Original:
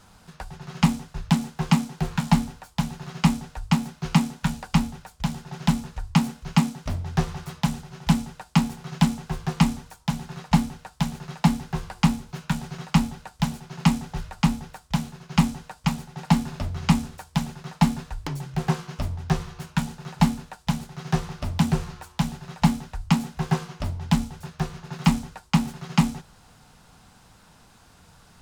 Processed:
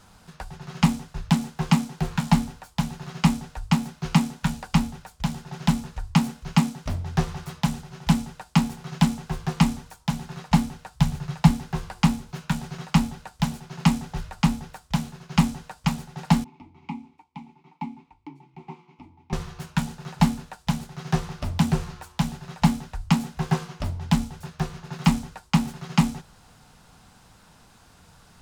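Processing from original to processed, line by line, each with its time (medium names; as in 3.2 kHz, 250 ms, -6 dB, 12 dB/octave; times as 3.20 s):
10.94–11.51 s: resonant low shelf 160 Hz +9 dB, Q 1.5
16.44–19.33 s: vowel filter u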